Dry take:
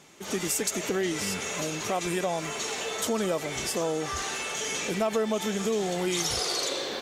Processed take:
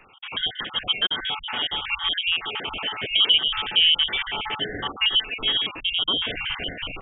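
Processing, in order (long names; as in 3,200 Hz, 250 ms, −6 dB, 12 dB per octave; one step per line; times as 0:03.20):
time-frequency cells dropped at random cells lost 52%
0:03.06–0:05.08: dynamic equaliser 390 Hz, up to +5 dB, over −42 dBFS, Q 0.72
voice inversion scrambler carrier 3,500 Hz
level +7 dB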